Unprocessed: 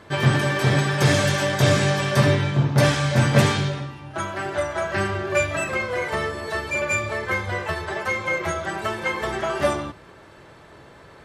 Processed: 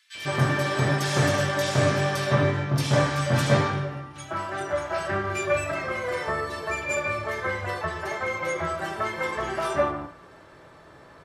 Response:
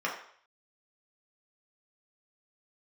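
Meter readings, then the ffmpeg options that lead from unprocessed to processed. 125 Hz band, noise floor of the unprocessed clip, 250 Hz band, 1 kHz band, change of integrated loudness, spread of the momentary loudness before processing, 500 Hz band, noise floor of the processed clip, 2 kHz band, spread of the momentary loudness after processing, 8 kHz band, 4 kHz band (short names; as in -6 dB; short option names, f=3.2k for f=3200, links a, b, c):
-5.0 dB, -47 dBFS, -4.5 dB, -1.5 dB, -3.5 dB, 9 LU, -2.5 dB, -50 dBFS, -4.0 dB, 8 LU, -4.0 dB, -5.0 dB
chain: -filter_complex "[0:a]acrossover=split=2400[a][b];[a]adelay=150[c];[c][b]amix=inputs=2:normalize=0,asplit=2[d][e];[1:a]atrim=start_sample=2205[f];[e][f]afir=irnorm=-1:irlink=0,volume=-11dB[g];[d][g]amix=inputs=2:normalize=0,volume=-5dB"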